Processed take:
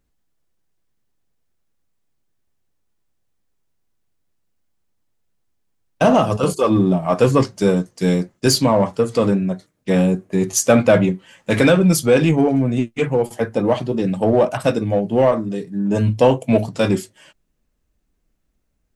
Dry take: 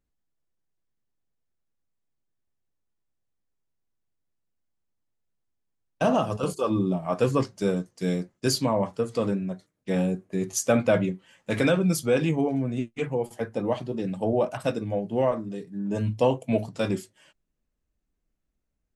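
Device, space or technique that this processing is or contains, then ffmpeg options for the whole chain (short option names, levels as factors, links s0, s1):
parallel distortion: -filter_complex "[0:a]asplit=2[s0][s1];[s1]asoftclip=type=hard:threshold=0.0668,volume=0.398[s2];[s0][s2]amix=inputs=2:normalize=0,volume=2.24"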